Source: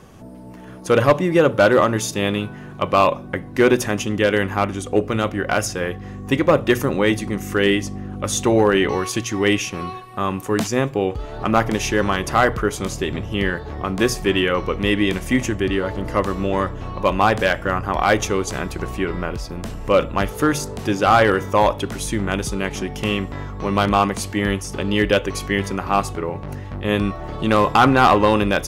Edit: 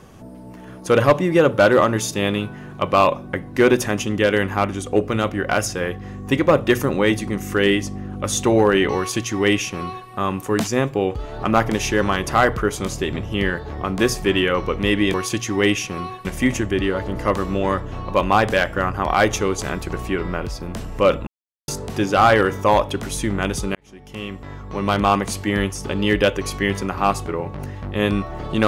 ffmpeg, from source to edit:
ffmpeg -i in.wav -filter_complex "[0:a]asplit=6[link_01][link_02][link_03][link_04][link_05][link_06];[link_01]atrim=end=15.142[link_07];[link_02]atrim=start=8.968:end=10.082[link_08];[link_03]atrim=start=15.138:end=20.16,asetpts=PTS-STARTPTS,afade=type=out:start_time=5.018:duration=0.004:curve=hsin[link_09];[link_04]atrim=start=20.16:end=20.57,asetpts=PTS-STARTPTS,volume=0[link_10];[link_05]atrim=start=20.57:end=22.64,asetpts=PTS-STARTPTS,afade=type=in:duration=0.004:curve=hsin,afade=type=out:start_time=2.066:duration=0.004:curve=hsin[link_11];[link_06]atrim=start=22.64,asetpts=PTS-STARTPTS,afade=type=in:duration=1.39[link_12];[link_07][link_08]acrossfade=duration=0.004:curve1=hsin:curve2=hsin[link_13];[link_09][link_10][link_11][link_12]concat=n=4:v=0:a=1[link_14];[link_13][link_14]acrossfade=duration=0.004:curve1=hsin:curve2=hsin" out.wav

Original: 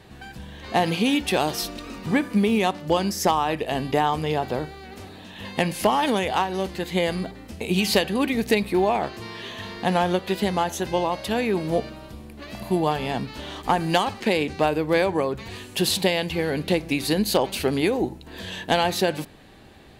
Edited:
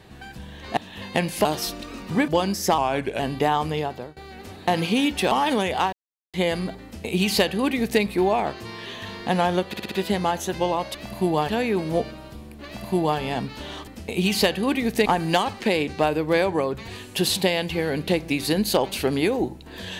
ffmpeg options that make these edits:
ffmpeg -i in.wav -filter_complex "[0:a]asplit=19[link_01][link_02][link_03][link_04][link_05][link_06][link_07][link_08][link_09][link_10][link_11][link_12][link_13][link_14][link_15][link_16][link_17][link_18][link_19];[link_01]atrim=end=0.772[link_20];[link_02]atrim=start=5.198:end=5.882[link_21];[link_03]atrim=start=1.408:end=2.242[link_22];[link_04]atrim=start=2.848:end=3.354[link_23];[link_05]atrim=start=3.35:end=3.72,asetpts=PTS-STARTPTS,asetrate=39249,aresample=44100[link_24];[link_06]atrim=start=3.716:end=4.69,asetpts=PTS-STARTPTS,afade=type=out:start_time=0.514:duration=0.46:silence=0.0794328[link_25];[link_07]atrim=start=4.69:end=5.202,asetpts=PTS-STARTPTS,afade=type=in:duration=0.004:curve=hsin:silence=0.0794328[link_26];[link_08]atrim=start=0.768:end=1.412[link_27];[link_09]atrim=start=5.878:end=6.49,asetpts=PTS-STARTPTS,afade=type=out:start_time=0.608:duration=0.004:curve=hsin[link_28];[link_10]atrim=start=6.49:end=6.9,asetpts=PTS-STARTPTS,volume=0[link_29];[link_11]atrim=start=6.9:end=10.302,asetpts=PTS-STARTPTS,afade=type=in:duration=0.004:curve=hsin[link_30];[link_12]atrim=start=10.238:end=10.302[link_31];[link_13]atrim=start=10.238:end=10.302[link_32];[link_14]atrim=start=10.238:end=10.302[link_33];[link_15]atrim=start=10.238:end=11.272[link_34];[link_16]atrim=start=12.438:end=12.982[link_35];[link_17]atrim=start=11.268:end=13.662[link_36];[link_18]atrim=start=7.398:end=8.582[link_37];[link_19]atrim=start=13.658[link_38];[link_20][link_21]acrossfade=duration=0.004:curve1=hsin:curve2=hsin[link_39];[link_39][link_22]acrossfade=duration=0.004:curve1=hsin:curve2=hsin[link_40];[link_40][link_23]acrossfade=duration=0.004:curve1=hsin:curve2=hsin[link_41];[link_41][link_24]acrossfade=duration=0.004:curve1=hsin:curve2=hsin[link_42];[link_25][link_26]concat=n=2:v=0:a=1[link_43];[link_42][link_43]acrossfade=duration=0.004:curve1=hsin:curve2=hsin[link_44];[link_44][link_27]acrossfade=duration=0.004:curve1=hsin:curve2=hsin[link_45];[link_28][link_29][link_30]concat=n=3:v=0:a=1[link_46];[link_45][link_46]acrossfade=duration=0.004:curve1=hsin:curve2=hsin[link_47];[link_47][link_31]acrossfade=duration=0.004:curve1=hsin:curve2=hsin[link_48];[link_48][link_32]acrossfade=duration=0.004:curve1=hsin:curve2=hsin[link_49];[link_49][link_33]acrossfade=duration=0.004:curve1=hsin:curve2=hsin[link_50];[link_50][link_34]acrossfade=duration=0.004:curve1=hsin:curve2=hsin[link_51];[link_51][link_35]acrossfade=duration=0.004:curve1=hsin:curve2=hsin[link_52];[link_52][link_36]acrossfade=duration=0.004:curve1=hsin:curve2=hsin[link_53];[link_53][link_37]acrossfade=duration=0.004:curve1=hsin:curve2=hsin[link_54];[link_54][link_38]acrossfade=duration=0.004:curve1=hsin:curve2=hsin" out.wav

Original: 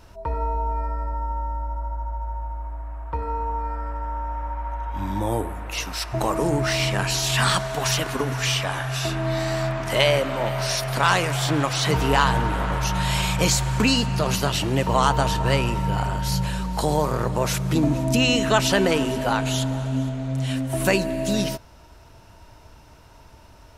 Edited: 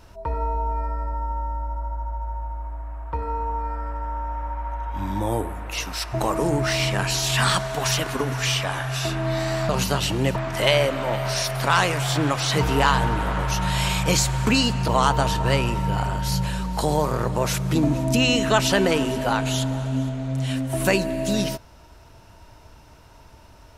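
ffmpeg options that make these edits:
ffmpeg -i in.wav -filter_complex "[0:a]asplit=4[link_01][link_02][link_03][link_04];[link_01]atrim=end=9.692[link_05];[link_02]atrim=start=14.208:end=14.882[link_06];[link_03]atrim=start=9.688:end=14.212[link_07];[link_04]atrim=start=14.878[link_08];[link_05][link_06]acrossfade=duration=0.004:curve1=hsin:curve2=hsin[link_09];[link_09][link_07]acrossfade=duration=0.004:curve1=hsin:curve2=hsin[link_10];[link_10][link_08]acrossfade=duration=0.004:curve1=hsin:curve2=hsin" out.wav

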